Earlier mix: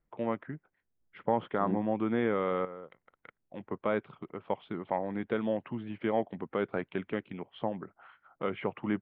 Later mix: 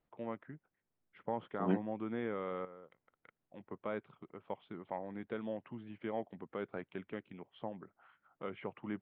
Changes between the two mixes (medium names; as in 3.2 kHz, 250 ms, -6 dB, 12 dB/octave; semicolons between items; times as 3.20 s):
first voice -9.5 dB; second voice: remove boxcar filter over 42 samples